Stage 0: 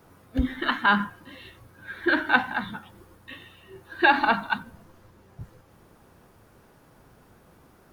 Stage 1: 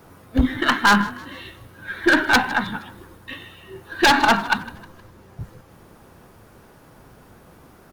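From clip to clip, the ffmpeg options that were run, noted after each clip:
ffmpeg -i in.wav -filter_complex "[0:a]aeval=exprs='0.188*(abs(mod(val(0)/0.188+3,4)-2)-1)':channel_layout=same,asplit=4[link_01][link_02][link_03][link_04];[link_02]adelay=156,afreqshift=44,volume=-19.5dB[link_05];[link_03]adelay=312,afreqshift=88,volume=-26.4dB[link_06];[link_04]adelay=468,afreqshift=132,volume=-33.4dB[link_07];[link_01][link_05][link_06][link_07]amix=inputs=4:normalize=0,aeval=exprs='0.224*(cos(1*acos(clip(val(0)/0.224,-1,1)))-cos(1*PI/2))+0.00708*(cos(8*acos(clip(val(0)/0.224,-1,1)))-cos(8*PI/2))':channel_layout=same,volume=7dB" out.wav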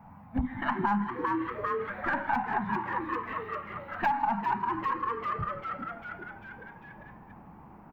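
ffmpeg -i in.wav -filter_complex "[0:a]firequalizer=gain_entry='entry(120,0);entry(210,8);entry(360,-21);entry(830,9);entry(1300,-6);entry(2300,-5);entry(3500,-22);entry(11000,-28);entry(15000,-13)':delay=0.05:min_phase=1,asplit=2[link_01][link_02];[link_02]asplit=7[link_03][link_04][link_05][link_06][link_07][link_08][link_09];[link_03]adelay=397,afreqshift=120,volume=-8dB[link_10];[link_04]adelay=794,afreqshift=240,volume=-13.2dB[link_11];[link_05]adelay=1191,afreqshift=360,volume=-18.4dB[link_12];[link_06]adelay=1588,afreqshift=480,volume=-23.6dB[link_13];[link_07]adelay=1985,afreqshift=600,volume=-28.8dB[link_14];[link_08]adelay=2382,afreqshift=720,volume=-34dB[link_15];[link_09]adelay=2779,afreqshift=840,volume=-39.2dB[link_16];[link_10][link_11][link_12][link_13][link_14][link_15][link_16]amix=inputs=7:normalize=0[link_17];[link_01][link_17]amix=inputs=2:normalize=0,acompressor=threshold=-23dB:ratio=4,volume=-4dB" out.wav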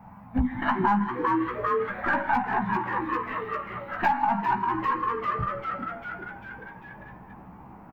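ffmpeg -i in.wav -filter_complex "[0:a]asplit=2[link_01][link_02];[link_02]adelay=16,volume=-5dB[link_03];[link_01][link_03]amix=inputs=2:normalize=0,volume=3dB" out.wav

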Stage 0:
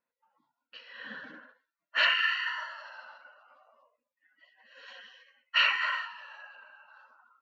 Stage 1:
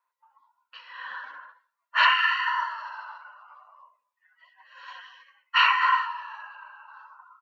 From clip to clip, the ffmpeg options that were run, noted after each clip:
ffmpeg -i in.wav -filter_complex "[0:a]highpass=frequency=1000:width_type=q:width=6.2,asplit=2[link_01][link_02];[link_02]adelay=88,lowpass=frequency=2000:poles=1,volume=-23dB,asplit=2[link_03][link_04];[link_04]adelay=88,lowpass=frequency=2000:poles=1,volume=0.47,asplit=2[link_05][link_06];[link_06]adelay=88,lowpass=frequency=2000:poles=1,volume=0.47[link_07];[link_01][link_03][link_05][link_07]amix=inputs=4:normalize=0,volume=1dB" out.wav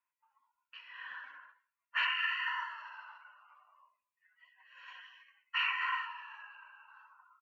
ffmpeg -i in.wav -af "firequalizer=gain_entry='entry(270,0);entry(400,-7);entry(1200,-3);entry(2500,8);entry(3900,-8);entry(7400,2)':delay=0.05:min_phase=1,alimiter=limit=-13.5dB:level=0:latency=1:release=278,volume=-8.5dB" out.wav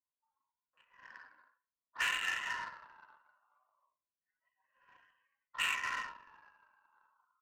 ffmpeg -i in.wav -filter_complex "[0:a]acrossover=split=1100[link_01][link_02];[link_02]adelay=40[link_03];[link_01][link_03]amix=inputs=2:normalize=0,adynamicsmooth=sensitivity=6:basefreq=660" out.wav

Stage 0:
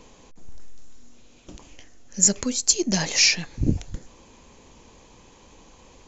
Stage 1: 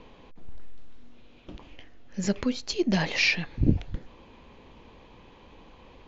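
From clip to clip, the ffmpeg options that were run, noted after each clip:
ffmpeg -i in.wav -af "lowpass=frequency=3700:width=0.5412,lowpass=frequency=3700:width=1.3066" out.wav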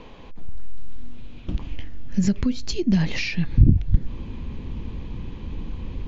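ffmpeg -i in.wav -af "acompressor=threshold=-34dB:ratio=4,asubboost=boost=9:cutoff=220,volume=6.5dB" out.wav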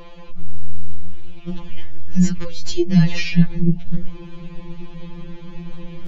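ffmpeg -i in.wav -af "afftfilt=real='re*2.83*eq(mod(b,8),0)':imag='im*2.83*eq(mod(b,8),0)':win_size=2048:overlap=0.75,volume=5dB" out.wav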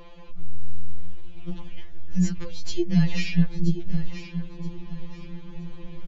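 ffmpeg -i in.wav -af "aecho=1:1:976|1952|2928:0.266|0.0772|0.0224,volume=-6.5dB" out.wav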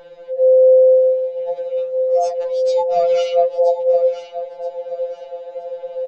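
ffmpeg -i in.wav -af "afftfilt=real='real(if(lt(b,1008),b+24*(1-2*mod(floor(b/24),2)),b),0)':imag='imag(if(lt(b,1008),b+24*(1-2*mod(floor(b/24),2)),b),0)':win_size=2048:overlap=0.75" out.wav

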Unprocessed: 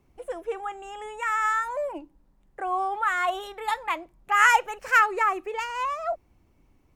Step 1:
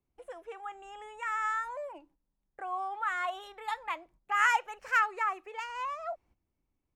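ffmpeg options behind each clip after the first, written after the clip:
ffmpeg -i in.wav -filter_complex "[0:a]agate=range=-13dB:threshold=-51dB:ratio=16:detection=peak,highshelf=frequency=9700:gain=-10,acrossover=split=550|5700[link_01][link_02][link_03];[link_01]acompressor=threshold=-48dB:ratio=4[link_04];[link_04][link_02][link_03]amix=inputs=3:normalize=0,volume=-7dB" out.wav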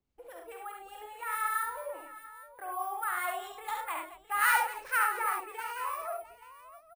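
ffmpeg -i in.wav -filter_complex "[0:a]acrusher=samples=4:mix=1:aa=0.000001,acrossover=split=1200[link_01][link_02];[link_01]aeval=exprs='val(0)*(1-0.5/2+0.5/2*cos(2*PI*4.8*n/s))':channel_layout=same[link_03];[link_02]aeval=exprs='val(0)*(1-0.5/2-0.5/2*cos(2*PI*4.8*n/s))':channel_layout=same[link_04];[link_03][link_04]amix=inputs=2:normalize=0,asplit=2[link_05][link_06];[link_06]aecho=0:1:50|69|103|223|663|837:0.447|0.631|0.376|0.15|0.158|0.158[link_07];[link_05][link_07]amix=inputs=2:normalize=0" out.wav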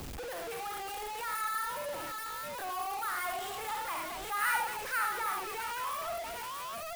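ffmpeg -i in.wav -af "aeval=exprs='val(0)+0.5*0.0398*sgn(val(0))':channel_layout=same,volume=-7dB" out.wav

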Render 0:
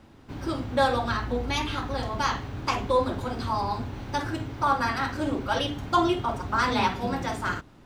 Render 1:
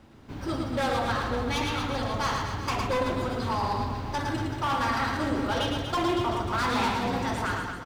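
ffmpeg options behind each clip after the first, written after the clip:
ffmpeg -i in.wav -filter_complex "[0:a]volume=23.5dB,asoftclip=hard,volume=-23.5dB,asplit=2[link_01][link_02];[link_02]aecho=0:1:110|236.5|382|549.3|741.7:0.631|0.398|0.251|0.158|0.1[link_03];[link_01][link_03]amix=inputs=2:normalize=0,volume=-1dB" out.wav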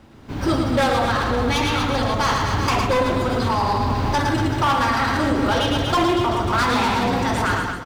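ffmpeg -i in.wav -af "dynaudnorm=framelen=120:gausssize=7:maxgain=9.5dB,alimiter=limit=-17.5dB:level=0:latency=1:release=187,volume=5.5dB" out.wav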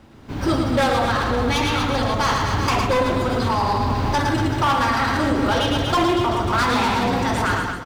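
ffmpeg -i in.wav -af anull out.wav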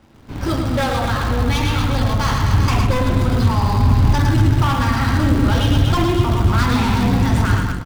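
ffmpeg -i in.wav -filter_complex "[0:a]asubboost=boost=5:cutoff=220,asplit=2[link_01][link_02];[link_02]acrusher=bits=4:dc=4:mix=0:aa=0.000001,volume=-10dB[link_03];[link_01][link_03]amix=inputs=2:normalize=0,volume=-3.5dB" out.wav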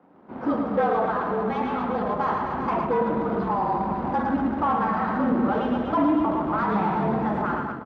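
ffmpeg -i in.wav -af "afreqshift=-46,asuperpass=centerf=550:order=4:qfactor=0.57" out.wav

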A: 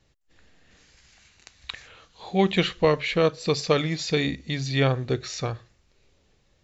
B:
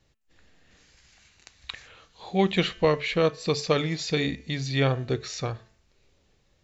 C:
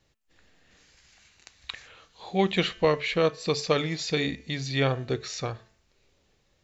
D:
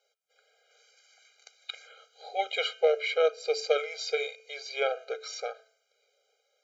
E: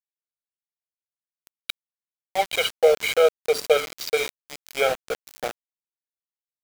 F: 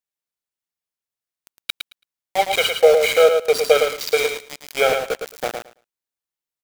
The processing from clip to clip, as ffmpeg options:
ffmpeg -i in.wav -af "bandreject=frequency=220.8:width_type=h:width=4,bandreject=frequency=441.6:width_type=h:width=4,bandreject=frequency=662.4:width_type=h:width=4,bandreject=frequency=883.2:width_type=h:width=4,bandreject=frequency=1104:width_type=h:width=4,bandreject=frequency=1324.8:width_type=h:width=4,bandreject=frequency=1545.6:width_type=h:width=4,bandreject=frequency=1766.4:width_type=h:width=4,bandreject=frequency=1987.2:width_type=h:width=4,bandreject=frequency=2208:width_type=h:width=4,bandreject=frequency=2428.8:width_type=h:width=4,bandreject=frequency=2649.6:width_type=h:width=4,bandreject=frequency=2870.4:width_type=h:width=4,bandreject=frequency=3091.2:width_type=h:width=4,volume=-1.5dB" out.wav
ffmpeg -i in.wav -af "lowshelf=frequency=220:gain=-4" out.wav
ffmpeg -i in.wav -af "afftfilt=real='re*eq(mod(floor(b*sr/1024/410),2),1)':imag='im*eq(mod(floor(b*sr/1024/410),2),1)':win_size=1024:overlap=0.75" out.wav
ffmpeg -i in.wav -af "aeval=exprs='val(0)*gte(abs(val(0)),0.0266)':channel_layout=same,volume=7dB" out.wav
ffmpeg -i in.wav -af "aecho=1:1:110|220|330:0.501|0.0752|0.0113,volume=4dB" out.wav

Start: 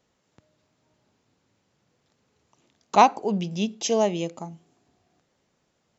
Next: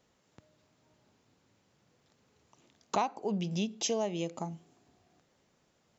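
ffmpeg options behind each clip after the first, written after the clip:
ffmpeg -i in.wav -af "acompressor=threshold=-30dB:ratio=4" out.wav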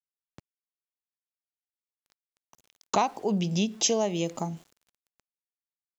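ffmpeg -i in.wav -af "bass=frequency=250:gain=1,treble=frequency=4000:gain=4,aeval=exprs='val(0)*gte(abs(val(0)),0.0015)':channel_layout=same,volume=5.5dB" out.wav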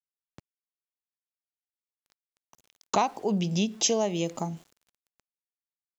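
ffmpeg -i in.wav -af anull out.wav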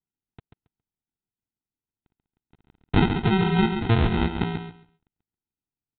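ffmpeg -i in.wav -af "aresample=8000,acrusher=samples=14:mix=1:aa=0.000001,aresample=44100,aecho=1:1:137|274|411:0.422|0.0759|0.0137,volume=5.5dB" out.wav

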